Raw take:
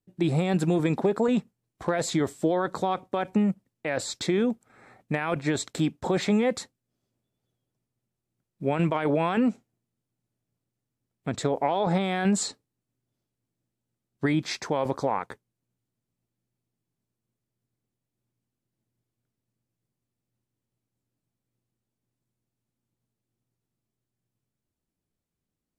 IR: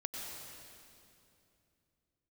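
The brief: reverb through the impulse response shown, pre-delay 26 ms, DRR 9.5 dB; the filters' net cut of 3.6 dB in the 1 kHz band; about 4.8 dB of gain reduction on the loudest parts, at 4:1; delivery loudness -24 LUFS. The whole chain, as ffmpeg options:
-filter_complex "[0:a]equalizer=f=1000:t=o:g=-5,acompressor=threshold=0.0562:ratio=4,asplit=2[s0][s1];[1:a]atrim=start_sample=2205,adelay=26[s2];[s1][s2]afir=irnorm=-1:irlink=0,volume=0.316[s3];[s0][s3]amix=inputs=2:normalize=0,volume=2.24"

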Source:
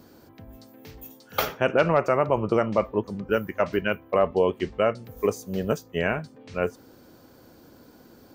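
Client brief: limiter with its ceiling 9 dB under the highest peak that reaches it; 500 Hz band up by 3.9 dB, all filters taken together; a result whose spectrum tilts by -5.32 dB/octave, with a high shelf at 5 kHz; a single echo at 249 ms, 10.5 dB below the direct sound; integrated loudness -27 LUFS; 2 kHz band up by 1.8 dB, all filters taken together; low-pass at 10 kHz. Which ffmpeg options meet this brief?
-af "lowpass=10000,equalizer=f=500:t=o:g=4.5,equalizer=f=2000:t=o:g=3.5,highshelf=f=5000:g=-8,alimiter=limit=0.2:level=0:latency=1,aecho=1:1:249:0.299"

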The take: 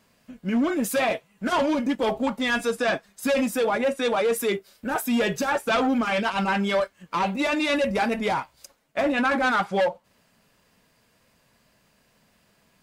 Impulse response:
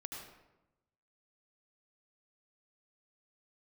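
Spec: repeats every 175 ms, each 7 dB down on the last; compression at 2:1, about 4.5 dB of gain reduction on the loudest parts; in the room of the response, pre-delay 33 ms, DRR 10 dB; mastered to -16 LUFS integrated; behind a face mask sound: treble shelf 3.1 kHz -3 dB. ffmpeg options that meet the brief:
-filter_complex "[0:a]acompressor=threshold=0.0398:ratio=2,aecho=1:1:175|350|525|700|875:0.447|0.201|0.0905|0.0407|0.0183,asplit=2[s0][s1];[1:a]atrim=start_sample=2205,adelay=33[s2];[s1][s2]afir=irnorm=-1:irlink=0,volume=0.398[s3];[s0][s3]amix=inputs=2:normalize=0,highshelf=f=3100:g=-3,volume=3.76"

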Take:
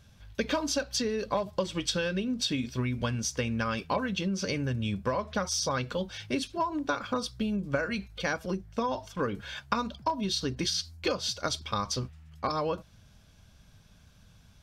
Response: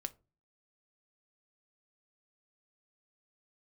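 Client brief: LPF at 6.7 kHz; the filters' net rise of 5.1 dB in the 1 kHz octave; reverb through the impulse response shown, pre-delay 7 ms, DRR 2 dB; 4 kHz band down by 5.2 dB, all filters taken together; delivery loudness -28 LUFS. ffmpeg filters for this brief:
-filter_complex "[0:a]lowpass=6700,equalizer=f=1000:t=o:g=6,equalizer=f=4000:t=o:g=-6,asplit=2[s0][s1];[1:a]atrim=start_sample=2205,adelay=7[s2];[s1][s2]afir=irnorm=-1:irlink=0,volume=1[s3];[s0][s3]amix=inputs=2:normalize=0"

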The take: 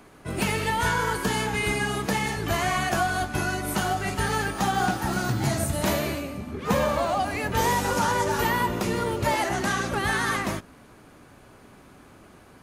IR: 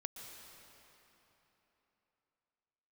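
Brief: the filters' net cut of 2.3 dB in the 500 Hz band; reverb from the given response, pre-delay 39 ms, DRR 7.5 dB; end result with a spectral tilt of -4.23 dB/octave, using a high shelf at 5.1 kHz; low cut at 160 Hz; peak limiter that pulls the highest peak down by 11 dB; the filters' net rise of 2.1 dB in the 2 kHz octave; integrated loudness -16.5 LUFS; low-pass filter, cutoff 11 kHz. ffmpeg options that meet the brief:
-filter_complex "[0:a]highpass=160,lowpass=11000,equalizer=f=500:t=o:g=-3,equalizer=f=2000:t=o:g=4,highshelf=f=5100:g=-8.5,alimiter=limit=0.075:level=0:latency=1,asplit=2[s0][s1];[1:a]atrim=start_sample=2205,adelay=39[s2];[s1][s2]afir=irnorm=-1:irlink=0,volume=0.562[s3];[s0][s3]amix=inputs=2:normalize=0,volume=4.73"

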